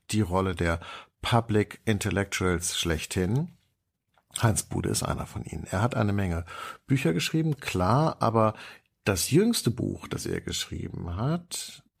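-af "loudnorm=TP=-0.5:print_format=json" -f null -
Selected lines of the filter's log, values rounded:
"input_i" : "-27.8",
"input_tp" : "-9.4",
"input_lra" : "2.1",
"input_thresh" : "-38.1",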